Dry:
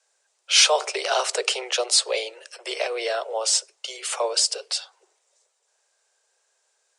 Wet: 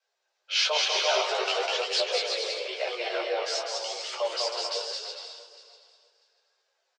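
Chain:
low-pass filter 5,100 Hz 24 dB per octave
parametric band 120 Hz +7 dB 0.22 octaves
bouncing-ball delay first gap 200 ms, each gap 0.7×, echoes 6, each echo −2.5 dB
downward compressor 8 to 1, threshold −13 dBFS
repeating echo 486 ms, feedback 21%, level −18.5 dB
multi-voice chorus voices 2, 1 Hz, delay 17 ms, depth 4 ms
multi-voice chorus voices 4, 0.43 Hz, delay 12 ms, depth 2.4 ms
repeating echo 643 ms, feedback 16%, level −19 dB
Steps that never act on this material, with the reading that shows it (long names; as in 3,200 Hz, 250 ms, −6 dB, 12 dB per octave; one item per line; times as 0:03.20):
parametric band 120 Hz: nothing at its input below 320 Hz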